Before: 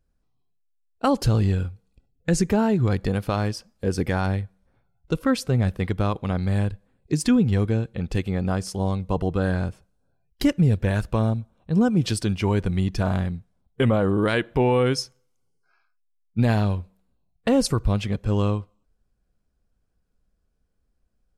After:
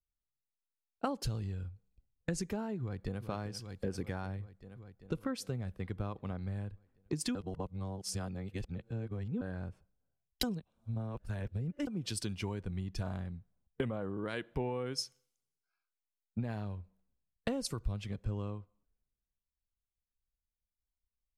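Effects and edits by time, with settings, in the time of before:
2.8–3.22 echo throw 0.39 s, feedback 75%, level -13 dB
7.35–9.41 reverse
10.43–11.87 reverse
whole clip: compressor 12:1, threshold -32 dBFS; three-band expander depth 70%; gain -2 dB

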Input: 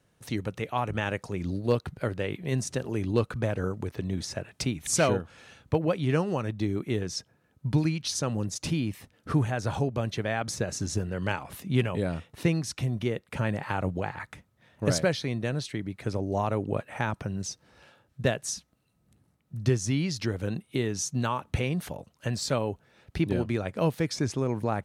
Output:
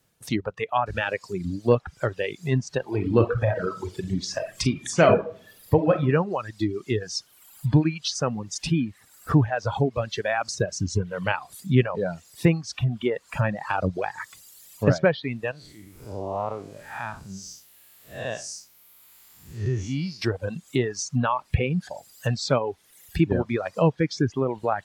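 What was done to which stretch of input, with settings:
0.86 noise floor step -68 dB -46 dB
2.84–5.96 reverb throw, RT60 0.87 s, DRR 2.5 dB
15.51–20.22 time blur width 0.212 s
whole clip: reverb removal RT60 2 s; treble ducked by the level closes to 2600 Hz, closed at -24.5 dBFS; spectral noise reduction 9 dB; gain +6.5 dB

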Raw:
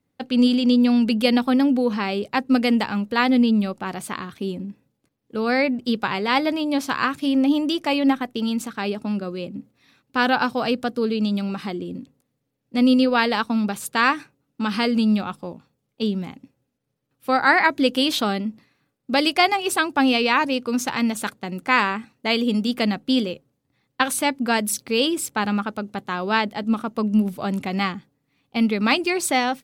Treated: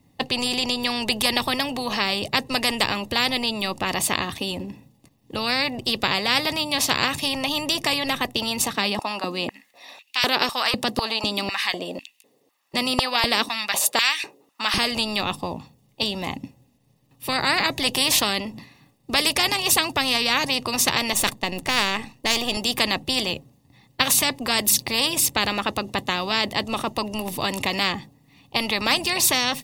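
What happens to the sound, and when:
8.74–14.78 stepped high-pass 4 Hz 200–2600 Hz
21.13–22.57 half-wave gain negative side -7 dB
whole clip: bell 1500 Hz -14.5 dB 0.34 oct; comb 1.1 ms, depth 42%; spectral compressor 4:1

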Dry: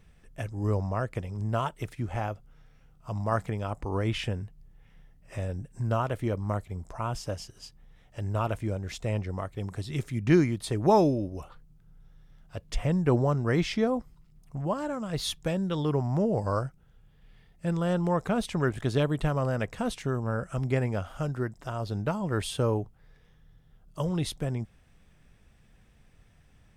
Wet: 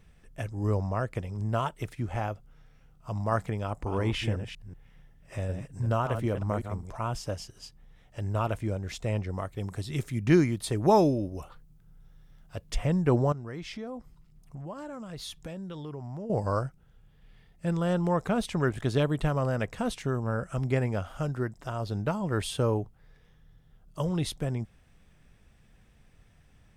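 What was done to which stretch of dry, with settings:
3.61–7.08 reverse delay 0.188 s, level -8 dB
9.34–12.78 high shelf 9200 Hz +6 dB
13.32–16.3 compressor 3:1, threshold -39 dBFS

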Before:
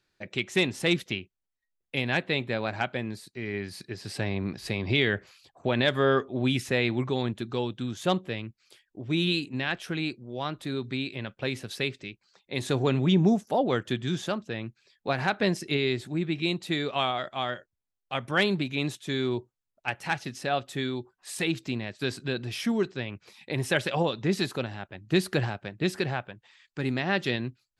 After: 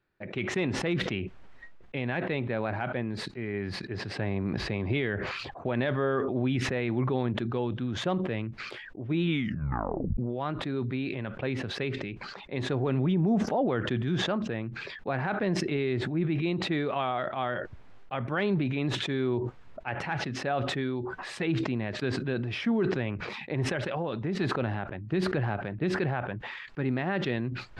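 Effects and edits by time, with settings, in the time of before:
9.24 tape stop 0.93 s
23.65–24.35 compressor 4:1, threshold -27 dBFS
whole clip: LPF 1900 Hz 12 dB/oct; limiter -19 dBFS; sustainer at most 27 dB/s

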